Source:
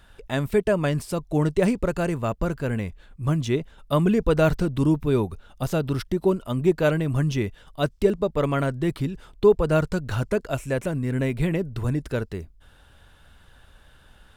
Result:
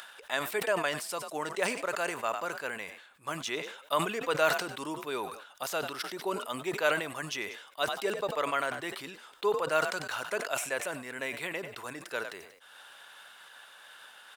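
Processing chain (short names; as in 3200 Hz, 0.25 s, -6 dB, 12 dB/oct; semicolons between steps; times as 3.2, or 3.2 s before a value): upward compressor, threshold -35 dBFS; HPF 870 Hz 12 dB/oct; frequency-shifting echo 95 ms, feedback 36%, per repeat +46 Hz, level -21 dB; sustainer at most 75 dB/s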